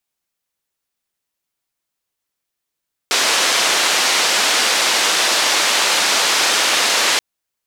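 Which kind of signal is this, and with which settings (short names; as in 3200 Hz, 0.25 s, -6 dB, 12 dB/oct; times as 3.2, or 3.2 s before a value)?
noise band 420–5600 Hz, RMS -16 dBFS 4.08 s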